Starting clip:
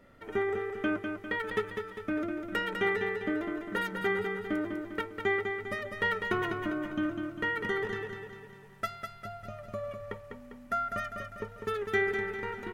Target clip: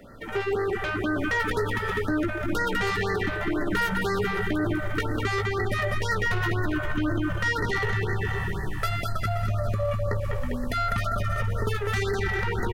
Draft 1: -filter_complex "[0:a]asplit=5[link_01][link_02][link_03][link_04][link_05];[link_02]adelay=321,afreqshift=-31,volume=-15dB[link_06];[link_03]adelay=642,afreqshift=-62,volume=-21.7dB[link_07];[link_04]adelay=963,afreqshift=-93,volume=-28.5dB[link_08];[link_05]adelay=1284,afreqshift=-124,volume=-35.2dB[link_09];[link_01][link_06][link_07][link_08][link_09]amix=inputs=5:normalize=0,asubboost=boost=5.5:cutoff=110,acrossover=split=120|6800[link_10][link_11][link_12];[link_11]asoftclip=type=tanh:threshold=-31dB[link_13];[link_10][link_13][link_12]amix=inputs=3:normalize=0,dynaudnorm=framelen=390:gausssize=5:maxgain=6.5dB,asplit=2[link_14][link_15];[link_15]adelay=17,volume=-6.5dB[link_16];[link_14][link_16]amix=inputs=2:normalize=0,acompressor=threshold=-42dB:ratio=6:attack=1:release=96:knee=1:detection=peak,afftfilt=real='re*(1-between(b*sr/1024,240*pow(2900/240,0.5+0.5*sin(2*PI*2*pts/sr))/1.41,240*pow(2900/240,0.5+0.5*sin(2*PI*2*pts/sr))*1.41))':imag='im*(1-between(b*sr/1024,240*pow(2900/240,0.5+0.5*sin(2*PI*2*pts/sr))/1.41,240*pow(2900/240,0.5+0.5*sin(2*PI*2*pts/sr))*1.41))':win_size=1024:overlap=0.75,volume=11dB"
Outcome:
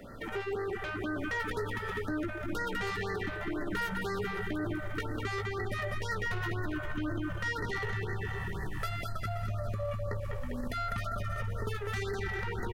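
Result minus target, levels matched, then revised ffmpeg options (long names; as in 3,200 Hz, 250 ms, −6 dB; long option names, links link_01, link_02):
downward compressor: peak gain reduction +8.5 dB
-filter_complex "[0:a]asplit=5[link_01][link_02][link_03][link_04][link_05];[link_02]adelay=321,afreqshift=-31,volume=-15dB[link_06];[link_03]adelay=642,afreqshift=-62,volume=-21.7dB[link_07];[link_04]adelay=963,afreqshift=-93,volume=-28.5dB[link_08];[link_05]adelay=1284,afreqshift=-124,volume=-35.2dB[link_09];[link_01][link_06][link_07][link_08][link_09]amix=inputs=5:normalize=0,asubboost=boost=5.5:cutoff=110,acrossover=split=120|6800[link_10][link_11][link_12];[link_11]asoftclip=type=tanh:threshold=-31dB[link_13];[link_10][link_13][link_12]amix=inputs=3:normalize=0,dynaudnorm=framelen=390:gausssize=5:maxgain=6.5dB,asplit=2[link_14][link_15];[link_15]adelay=17,volume=-6.5dB[link_16];[link_14][link_16]amix=inputs=2:normalize=0,acompressor=threshold=-32dB:ratio=6:attack=1:release=96:knee=1:detection=peak,afftfilt=real='re*(1-between(b*sr/1024,240*pow(2900/240,0.5+0.5*sin(2*PI*2*pts/sr))/1.41,240*pow(2900/240,0.5+0.5*sin(2*PI*2*pts/sr))*1.41))':imag='im*(1-between(b*sr/1024,240*pow(2900/240,0.5+0.5*sin(2*PI*2*pts/sr))/1.41,240*pow(2900/240,0.5+0.5*sin(2*PI*2*pts/sr))*1.41))':win_size=1024:overlap=0.75,volume=11dB"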